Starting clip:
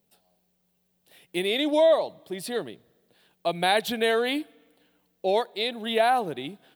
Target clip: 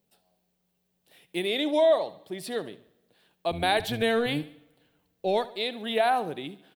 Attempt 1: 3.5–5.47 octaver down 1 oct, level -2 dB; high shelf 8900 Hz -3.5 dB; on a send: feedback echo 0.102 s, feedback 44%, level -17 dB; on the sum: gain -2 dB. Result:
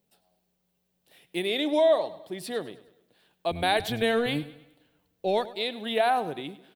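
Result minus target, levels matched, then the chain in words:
echo 31 ms late
3.5–5.47 octaver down 1 oct, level -2 dB; high shelf 8900 Hz -3.5 dB; on a send: feedback echo 71 ms, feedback 44%, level -17 dB; on the sum: gain -2 dB

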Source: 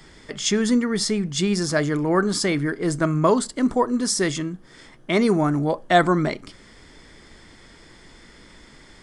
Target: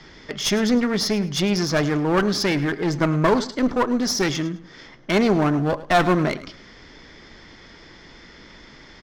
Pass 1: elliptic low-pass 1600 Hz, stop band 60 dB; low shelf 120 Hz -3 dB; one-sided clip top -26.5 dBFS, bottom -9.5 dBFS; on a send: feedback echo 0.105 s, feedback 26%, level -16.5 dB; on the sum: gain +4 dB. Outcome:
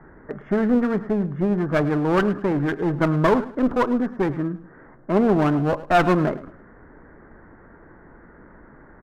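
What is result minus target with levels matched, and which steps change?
8000 Hz band -20.0 dB
change: elliptic low-pass 6000 Hz, stop band 60 dB

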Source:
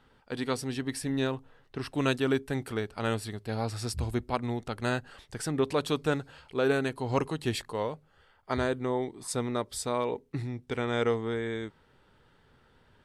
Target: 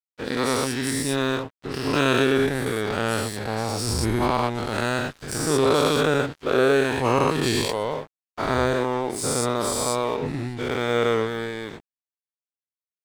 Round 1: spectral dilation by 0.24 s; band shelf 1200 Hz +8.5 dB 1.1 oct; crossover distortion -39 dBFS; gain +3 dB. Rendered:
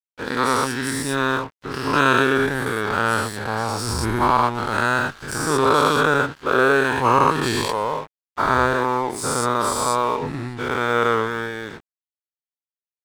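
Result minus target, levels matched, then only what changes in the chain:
1000 Hz band +4.5 dB
remove: band shelf 1200 Hz +8.5 dB 1.1 oct

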